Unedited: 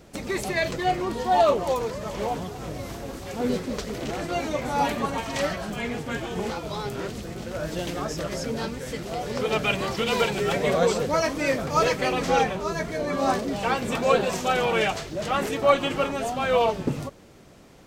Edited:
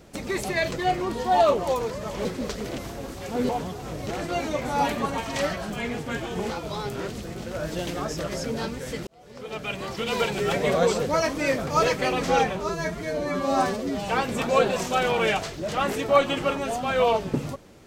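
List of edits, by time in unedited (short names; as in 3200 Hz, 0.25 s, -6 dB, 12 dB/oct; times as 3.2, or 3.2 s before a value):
2.25–2.83 swap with 3.54–4.07
9.07–10.49 fade in
12.69–13.62 stretch 1.5×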